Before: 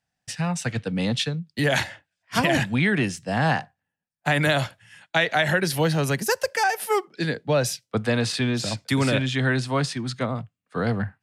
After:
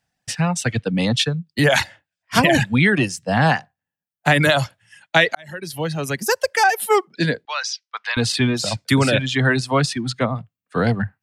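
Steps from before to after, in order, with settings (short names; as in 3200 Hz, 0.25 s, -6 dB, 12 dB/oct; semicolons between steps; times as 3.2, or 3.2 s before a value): reverb removal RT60 1 s; 5.35–6.65 fade in; 7.45–8.17 elliptic band-pass 1000–5700 Hz, stop band 70 dB; gain +6.5 dB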